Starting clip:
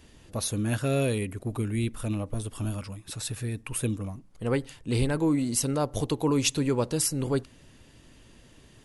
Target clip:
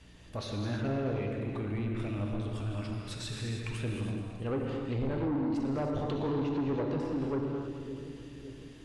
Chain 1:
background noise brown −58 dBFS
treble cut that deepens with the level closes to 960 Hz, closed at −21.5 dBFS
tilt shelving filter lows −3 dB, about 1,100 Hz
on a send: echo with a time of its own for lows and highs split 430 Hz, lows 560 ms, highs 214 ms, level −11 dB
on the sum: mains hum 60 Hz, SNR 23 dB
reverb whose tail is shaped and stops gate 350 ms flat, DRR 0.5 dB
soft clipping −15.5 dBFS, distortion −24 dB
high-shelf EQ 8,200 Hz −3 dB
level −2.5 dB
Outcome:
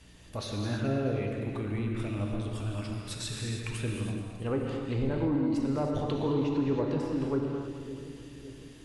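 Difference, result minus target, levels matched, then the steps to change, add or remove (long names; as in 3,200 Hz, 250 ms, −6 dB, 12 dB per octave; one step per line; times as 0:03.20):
soft clipping: distortion −11 dB; 8,000 Hz band +4.0 dB
change: soft clipping −24 dBFS, distortion −13 dB
change: high-shelf EQ 8,200 Hz −15 dB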